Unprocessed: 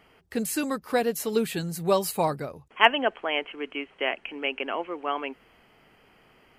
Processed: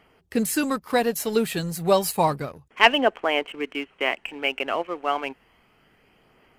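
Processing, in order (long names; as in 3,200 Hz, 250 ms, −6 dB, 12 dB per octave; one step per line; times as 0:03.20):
phase shifter 0.31 Hz, delay 1.7 ms, feedback 25%
leveller curve on the samples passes 1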